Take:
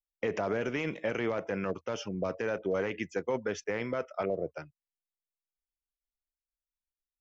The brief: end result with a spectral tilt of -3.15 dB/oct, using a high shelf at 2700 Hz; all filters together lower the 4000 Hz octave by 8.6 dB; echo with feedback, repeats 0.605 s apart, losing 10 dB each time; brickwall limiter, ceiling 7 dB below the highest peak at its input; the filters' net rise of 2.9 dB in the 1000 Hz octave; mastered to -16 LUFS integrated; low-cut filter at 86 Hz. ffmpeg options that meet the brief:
-af "highpass=86,equalizer=f=1k:t=o:g=5.5,highshelf=f=2.7k:g=-6,equalizer=f=4k:t=o:g=-8.5,alimiter=level_in=1.5dB:limit=-24dB:level=0:latency=1,volume=-1.5dB,aecho=1:1:605|1210|1815|2420:0.316|0.101|0.0324|0.0104,volume=20.5dB"

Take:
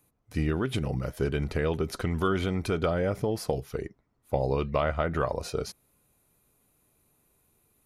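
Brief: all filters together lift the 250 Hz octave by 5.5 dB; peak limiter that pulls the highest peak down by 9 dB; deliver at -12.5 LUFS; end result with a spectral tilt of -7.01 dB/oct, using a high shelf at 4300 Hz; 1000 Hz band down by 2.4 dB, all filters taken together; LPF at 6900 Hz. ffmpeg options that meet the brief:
-af "lowpass=6.9k,equalizer=f=250:t=o:g=8,equalizer=f=1k:t=o:g=-3.5,highshelf=f=4.3k:g=-4.5,volume=18.5dB,alimiter=limit=-1dB:level=0:latency=1"

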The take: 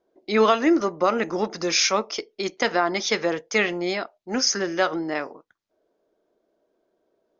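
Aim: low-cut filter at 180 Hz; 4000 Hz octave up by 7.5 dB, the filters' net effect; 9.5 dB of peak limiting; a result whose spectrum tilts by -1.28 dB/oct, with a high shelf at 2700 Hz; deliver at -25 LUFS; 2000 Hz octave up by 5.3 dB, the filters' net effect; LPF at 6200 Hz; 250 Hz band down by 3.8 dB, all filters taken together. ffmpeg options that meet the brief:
-af "highpass=180,lowpass=6.2k,equalizer=f=250:t=o:g=-5,equalizer=f=2k:t=o:g=3,highshelf=f=2.7k:g=3.5,equalizer=f=4k:t=o:g=7.5,volume=-1.5dB,alimiter=limit=-13.5dB:level=0:latency=1"

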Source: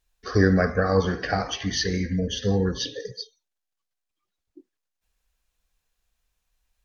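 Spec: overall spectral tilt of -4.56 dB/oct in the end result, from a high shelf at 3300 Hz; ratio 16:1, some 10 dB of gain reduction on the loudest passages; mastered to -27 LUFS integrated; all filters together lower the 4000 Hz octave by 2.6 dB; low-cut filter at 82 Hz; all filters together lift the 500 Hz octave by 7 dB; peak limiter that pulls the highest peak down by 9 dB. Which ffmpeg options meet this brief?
-af "highpass=82,equalizer=f=500:t=o:g=8,highshelf=f=3.3k:g=3.5,equalizer=f=4k:t=o:g=-6,acompressor=threshold=-20dB:ratio=16,volume=2.5dB,alimiter=limit=-17.5dB:level=0:latency=1"

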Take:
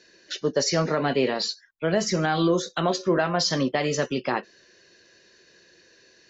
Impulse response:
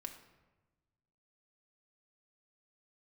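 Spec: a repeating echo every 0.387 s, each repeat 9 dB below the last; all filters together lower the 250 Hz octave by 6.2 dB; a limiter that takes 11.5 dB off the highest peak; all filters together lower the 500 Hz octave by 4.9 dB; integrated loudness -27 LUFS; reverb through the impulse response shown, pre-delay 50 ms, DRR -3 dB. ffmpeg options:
-filter_complex "[0:a]equalizer=f=250:t=o:g=-8,equalizer=f=500:t=o:g=-4,alimiter=limit=-24dB:level=0:latency=1,aecho=1:1:387|774|1161|1548:0.355|0.124|0.0435|0.0152,asplit=2[a][b];[1:a]atrim=start_sample=2205,adelay=50[c];[b][c]afir=irnorm=-1:irlink=0,volume=6.5dB[d];[a][d]amix=inputs=2:normalize=0,volume=1.5dB"

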